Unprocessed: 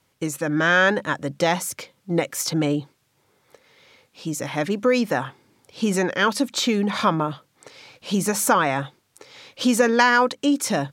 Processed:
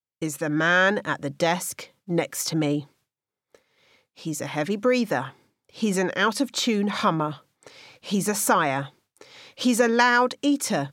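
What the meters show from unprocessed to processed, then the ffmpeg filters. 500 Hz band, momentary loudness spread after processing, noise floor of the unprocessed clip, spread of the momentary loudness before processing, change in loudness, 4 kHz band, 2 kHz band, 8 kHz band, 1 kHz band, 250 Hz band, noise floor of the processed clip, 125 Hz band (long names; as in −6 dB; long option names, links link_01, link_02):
−2.0 dB, 13 LU, −67 dBFS, 13 LU, −2.0 dB, −2.0 dB, −2.0 dB, −2.0 dB, −2.0 dB, −2.0 dB, below −85 dBFS, −2.0 dB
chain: -af "agate=range=-33dB:threshold=-48dB:ratio=3:detection=peak,volume=-2dB"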